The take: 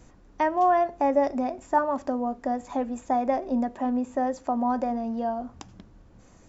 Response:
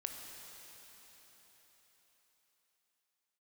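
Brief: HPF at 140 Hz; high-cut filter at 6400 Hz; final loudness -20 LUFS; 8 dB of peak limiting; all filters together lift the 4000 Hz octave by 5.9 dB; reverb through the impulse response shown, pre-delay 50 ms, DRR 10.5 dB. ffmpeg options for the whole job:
-filter_complex "[0:a]highpass=140,lowpass=6.4k,equalizer=f=4k:t=o:g=8.5,alimiter=limit=-18dB:level=0:latency=1,asplit=2[a][b];[1:a]atrim=start_sample=2205,adelay=50[c];[b][c]afir=irnorm=-1:irlink=0,volume=-9.5dB[d];[a][d]amix=inputs=2:normalize=0,volume=8dB"

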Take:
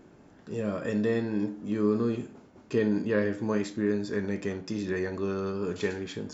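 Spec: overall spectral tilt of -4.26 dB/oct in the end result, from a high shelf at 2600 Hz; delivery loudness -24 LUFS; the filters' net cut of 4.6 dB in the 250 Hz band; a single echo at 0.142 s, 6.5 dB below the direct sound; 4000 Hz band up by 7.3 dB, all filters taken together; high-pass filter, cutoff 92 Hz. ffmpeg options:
-af "highpass=92,equalizer=f=250:t=o:g=-6,highshelf=f=2.6k:g=6.5,equalizer=f=4k:t=o:g=3.5,aecho=1:1:142:0.473,volume=7.5dB"

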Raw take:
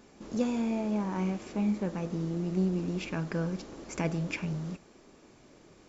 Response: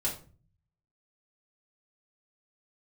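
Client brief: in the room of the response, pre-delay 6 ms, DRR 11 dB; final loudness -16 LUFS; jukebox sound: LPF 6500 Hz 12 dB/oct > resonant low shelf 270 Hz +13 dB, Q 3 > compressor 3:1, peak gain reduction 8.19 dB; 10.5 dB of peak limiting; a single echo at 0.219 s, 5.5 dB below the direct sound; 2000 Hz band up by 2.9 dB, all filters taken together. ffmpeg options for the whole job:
-filter_complex "[0:a]equalizer=f=2k:t=o:g=4,alimiter=level_in=2.5dB:limit=-24dB:level=0:latency=1,volume=-2.5dB,aecho=1:1:219:0.531,asplit=2[a][b];[1:a]atrim=start_sample=2205,adelay=6[c];[b][c]afir=irnorm=-1:irlink=0,volume=-16dB[d];[a][d]amix=inputs=2:normalize=0,lowpass=6.5k,lowshelf=f=270:t=q:w=3:g=13,acompressor=threshold=-17dB:ratio=3,volume=4dB"

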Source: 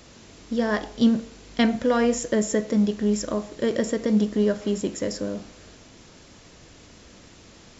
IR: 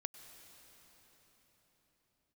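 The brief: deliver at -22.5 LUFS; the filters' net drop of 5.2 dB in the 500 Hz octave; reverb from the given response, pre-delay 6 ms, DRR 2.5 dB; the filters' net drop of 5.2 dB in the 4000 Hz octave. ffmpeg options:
-filter_complex "[0:a]equalizer=f=500:t=o:g=-6,equalizer=f=4k:t=o:g=-7.5,asplit=2[a][b];[1:a]atrim=start_sample=2205,adelay=6[c];[b][c]afir=irnorm=-1:irlink=0,volume=0.5dB[d];[a][d]amix=inputs=2:normalize=0,volume=3dB"

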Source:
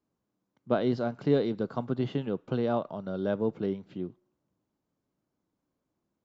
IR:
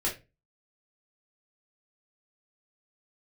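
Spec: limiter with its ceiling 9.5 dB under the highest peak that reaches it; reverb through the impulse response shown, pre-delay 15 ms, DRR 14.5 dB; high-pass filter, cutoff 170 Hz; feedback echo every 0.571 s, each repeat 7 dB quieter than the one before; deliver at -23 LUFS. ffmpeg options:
-filter_complex "[0:a]highpass=170,alimiter=limit=-22dB:level=0:latency=1,aecho=1:1:571|1142|1713|2284|2855:0.447|0.201|0.0905|0.0407|0.0183,asplit=2[a][b];[1:a]atrim=start_sample=2205,adelay=15[c];[b][c]afir=irnorm=-1:irlink=0,volume=-21.5dB[d];[a][d]amix=inputs=2:normalize=0,volume=10.5dB"

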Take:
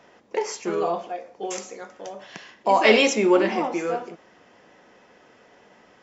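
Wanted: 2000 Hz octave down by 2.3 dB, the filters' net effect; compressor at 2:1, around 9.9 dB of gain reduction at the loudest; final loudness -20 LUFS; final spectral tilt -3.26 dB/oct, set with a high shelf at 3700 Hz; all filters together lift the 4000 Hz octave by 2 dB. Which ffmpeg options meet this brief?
-af "equalizer=f=2k:t=o:g=-4,highshelf=f=3.7k:g=-4.5,equalizer=f=4k:t=o:g=7.5,acompressor=threshold=-30dB:ratio=2,volume=11dB"

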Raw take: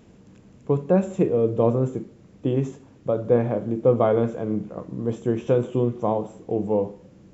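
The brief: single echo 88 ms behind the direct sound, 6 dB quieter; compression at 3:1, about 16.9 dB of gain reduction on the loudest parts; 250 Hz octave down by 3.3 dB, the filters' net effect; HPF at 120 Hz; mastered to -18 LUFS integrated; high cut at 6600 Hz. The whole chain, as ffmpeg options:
-af "highpass=120,lowpass=6.6k,equalizer=f=250:t=o:g=-4,acompressor=threshold=-39dB:ratio=3,aecho=1:1:88:0.501,volume=21dB"

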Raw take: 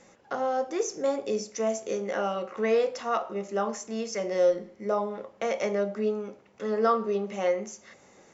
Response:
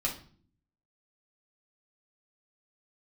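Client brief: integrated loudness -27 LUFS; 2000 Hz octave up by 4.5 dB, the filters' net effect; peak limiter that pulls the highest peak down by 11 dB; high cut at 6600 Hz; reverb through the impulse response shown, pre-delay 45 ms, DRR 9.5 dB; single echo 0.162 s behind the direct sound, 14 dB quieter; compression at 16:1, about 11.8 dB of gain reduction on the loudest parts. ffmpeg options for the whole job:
-filter_complex "[0:a]lowpass=6.6k,equalizer=f=2k:t=o:g=5.5,acompressor=threshold=-30dB:ratio=16,alimiter=level_in=4dB:limit=-24dB:level=0:latency=1,volume=-4dB,aecho=1:1:162:0.2,asplit=2[a][b];[1:a]atrim=start_sample=2205,adelay=45[c];[b][c]afir=irnorm=-1:irlink=0,volume=-14.5dB[d];[a][d]amix=inputs=2:normalize=0,volume=9.5dB"

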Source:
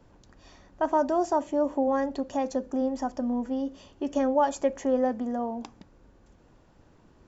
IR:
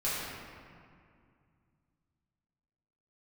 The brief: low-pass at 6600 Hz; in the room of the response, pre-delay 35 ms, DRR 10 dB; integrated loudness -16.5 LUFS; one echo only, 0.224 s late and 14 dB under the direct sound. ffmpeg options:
-filter_complex "[0:a]lowpass=6.6k,aecho=1:1:224:0.2,asplit=2[a][b];[1:a]atrim=start_sample=2205,adelay=35[c];[b][c]afir=irnorm=-1:irlink=0,volume=-18dB[d];[a][d]amix=inputs=2:normalize=0,volume=11dB"

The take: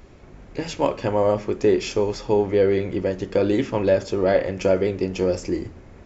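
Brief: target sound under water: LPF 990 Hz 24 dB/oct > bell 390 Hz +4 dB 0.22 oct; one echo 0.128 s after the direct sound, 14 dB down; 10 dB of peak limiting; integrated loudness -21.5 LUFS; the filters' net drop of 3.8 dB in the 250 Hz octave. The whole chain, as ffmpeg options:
-af "equalizer=f=250:t=o:g=-7.5,alimiter=limit=-17dB:level=0:latency=1,lowpass=f=990:w=0.5412,lowpass=f=990:w=1.3066,equalizer=f=390:t=o:w=0.22:g=4,aecho=1:1:128:0.2,volume=5dB"

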